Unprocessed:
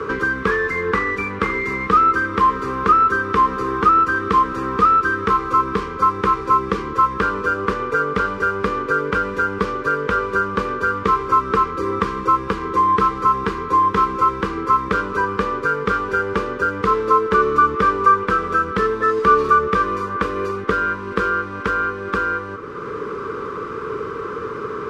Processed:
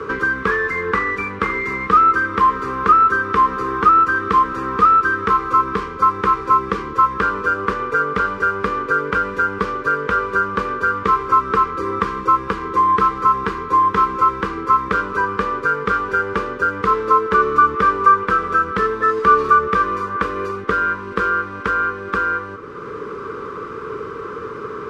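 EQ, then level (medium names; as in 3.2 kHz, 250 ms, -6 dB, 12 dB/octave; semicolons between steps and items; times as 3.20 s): dynamic bell 1.4 kHz, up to +4 dB, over -28 dBFS, Q 0.88; -2.0 dB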